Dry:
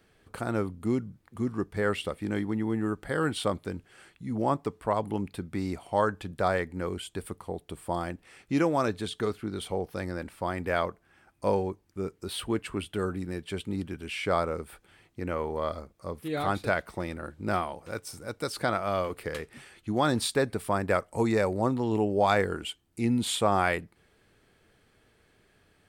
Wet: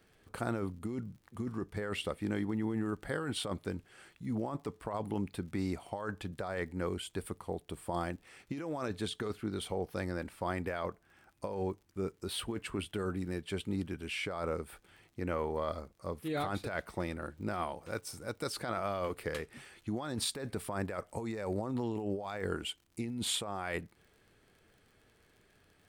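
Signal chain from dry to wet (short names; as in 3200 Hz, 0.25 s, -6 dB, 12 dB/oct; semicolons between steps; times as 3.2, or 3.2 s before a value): negative-ratio compressor -30 dBFS, ratio -1; crackle 57/s -48 dBFS; gain -5 dB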